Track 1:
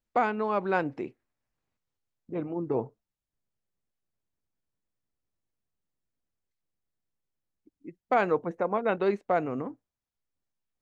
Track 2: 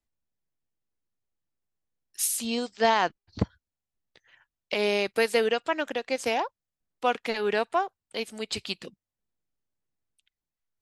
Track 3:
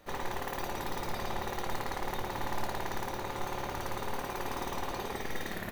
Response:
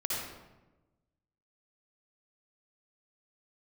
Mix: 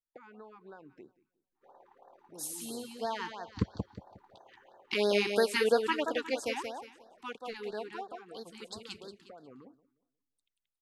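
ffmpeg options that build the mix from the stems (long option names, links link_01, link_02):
-filter_complex "[0:a]acompressor=threshold=-25dB:ratio=6,volume=-14.5dB,asplit=2[link_01][link_02];[link_02]volume=-23.5dB[link_03];[1:a]adelay=200,volume=-2dB,afade=type=in:start_time=3.23:duration=0.54:silence=0.298538,afade=type=out:start_time=6.09:duration=0.66:silence=0.298538,asplit=2[link_04][link_05];[link_05]volume=-6.5dB[link_06];[2:a]bandpass=frequency=650:width_type=q:width=2.8:csg=0,adelay=1550,volume=-13.5dB[link_07];[link_01][link_07]amix=inputs=2:normalize=0,equalizer=frequency=67:width=0.4:gain=-5.5,acompressor=threshold=-47dB:ratio=4,volume=0dB[link_08];[link_03][link_06]amix=inputs=2:normalize=0,aecho=0:1:180|360|540|720:1|0.31|0.0961|0.0298[link_09];[link_04][link_08][link_09]amix=inputs=3:normalize=0,afftfilt=real='re*(1-between(b*sr/1024,530*pow(2600/530,0.5+0.5*sin(2*PI*3*pts/sr))/1.41,530*pow(2600/530,0.5+0.5*sin(2*PI*3*pts/sr))*1.41))':imag='im*(1-between(b*sr/1024,530*pow(2600/530,0.5+0.5*sin(2*PI*3*pts/sr))/1.41,530*pow(2600/530,0.5+0.5*sin(2*PI*3*pts/sr))*1.41))':win_size=1024:overlap=0.75"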